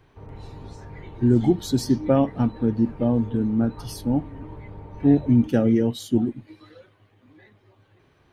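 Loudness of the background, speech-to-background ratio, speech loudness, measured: -42.0 LUFS, 20.0 dB, -22.0 LUFS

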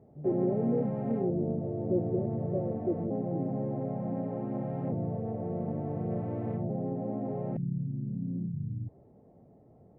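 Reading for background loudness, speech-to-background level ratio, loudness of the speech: -34.5 LUFS, 0.5 dB, -34.0 LUFS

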